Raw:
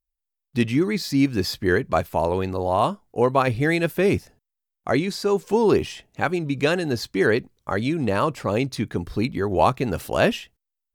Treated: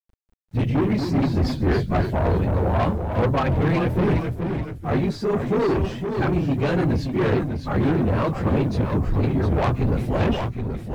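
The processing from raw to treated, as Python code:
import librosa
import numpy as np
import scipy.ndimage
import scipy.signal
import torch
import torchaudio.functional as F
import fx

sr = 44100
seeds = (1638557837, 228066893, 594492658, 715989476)

y = fx.phase_scramble(x, sr, seeds[0], window_ms=50)
y = fx.riaa(y, sr, side='playback')
y = 10.0 ** (-17.5 / 20.0) * np.tanh(y / 10.0 ** (-17.5 / 20.0))
y = fx.quant_dither(y, sr, seeds[1], bits=10, dither='none')
y = fx.echo_pitch(y, sr, ms=190, semitones=-1, count=3, db_per_echo=-6.0)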